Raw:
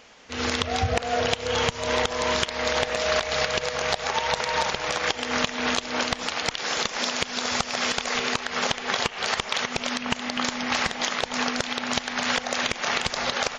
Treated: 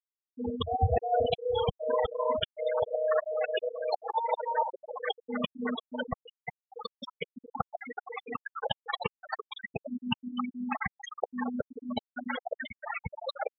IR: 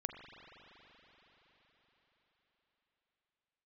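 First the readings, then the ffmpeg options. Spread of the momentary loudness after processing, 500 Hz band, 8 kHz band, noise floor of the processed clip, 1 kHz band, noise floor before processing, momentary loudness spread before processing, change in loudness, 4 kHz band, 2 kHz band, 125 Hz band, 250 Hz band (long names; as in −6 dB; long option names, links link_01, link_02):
12 LU, −2.5 dB, below −35 dB, below −85 dBFS, −5.5 dB, −38 dBFS, 2 LU, −8.0 dB, −14.5 dB, −14.0 dB, −3.0 dB, −4.5 dB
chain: -af "aeval=exprs='val(0)+0.00631*sin(2*PI*460*n/s)':channel_layout=same,afftfilt=real='re*gte(hypot(re,im),0.2)':imag='im*gte(hypot(re,im),0.2)':win_size=1024:overlap=0.75"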